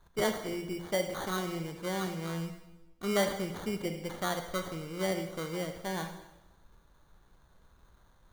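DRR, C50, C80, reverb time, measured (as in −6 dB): 6.0 dB, 8.0 dB, 10.0 dB, 1.0 s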